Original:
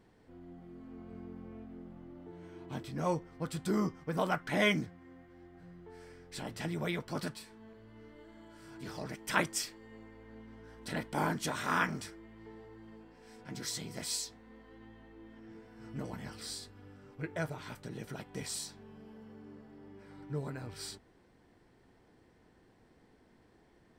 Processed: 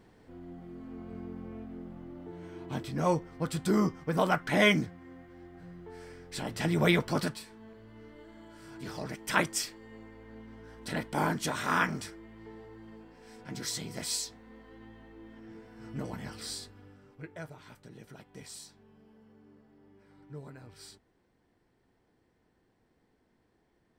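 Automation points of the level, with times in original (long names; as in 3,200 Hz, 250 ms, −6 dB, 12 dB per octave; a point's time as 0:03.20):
0:06.50 +5 dB
0:06.91 +11.5 dB
0:07.45 +3 dB
0:16.60 +3 dB
0:17.40 −7 dB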